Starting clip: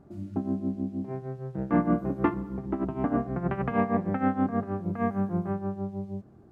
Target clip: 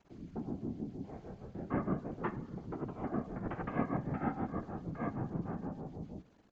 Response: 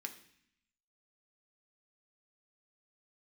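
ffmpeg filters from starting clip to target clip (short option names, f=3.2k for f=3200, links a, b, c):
-filter_complex "[0:a]aeval=exprs='val(0)*gte(abs(val(0)),0.00282)':c=same,asplit=2[a][b];[1:a]atrim=start_sample=2205,asetrate=38367,aresample=44100[c];[b][c]afir=irnorm=-1:irlink=0,volume=-6.5dB[d];[a][d]amix=inputs=2:normalize=0,afftfilt=real='hypot(re,im)*cos(2*PI*random(0))':imag='hypot(re,im)*sin(2*PI*random(1))':win_size=512:overlap=0.75,aresample=16000,aresample=44100,volume=-5.5dB"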